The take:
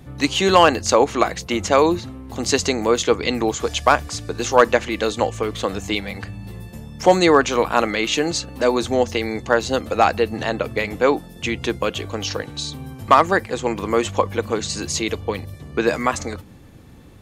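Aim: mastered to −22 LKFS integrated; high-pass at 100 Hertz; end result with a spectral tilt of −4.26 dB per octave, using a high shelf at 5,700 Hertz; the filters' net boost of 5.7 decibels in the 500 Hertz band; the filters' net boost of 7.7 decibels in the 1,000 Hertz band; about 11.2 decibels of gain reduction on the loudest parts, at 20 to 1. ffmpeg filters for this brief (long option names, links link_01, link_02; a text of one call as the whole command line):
ffmpeg -i in.wav -af "highpass=100,equalizer=frequency=500:width_type=o:gain=4.5,equalizer=frequency=1000:width_type=o:gain=8.5,highshelf=frequency=5700:gain=-7,acompressor=threshold=-11dB:ratio=20,volume=-2dB" out.wav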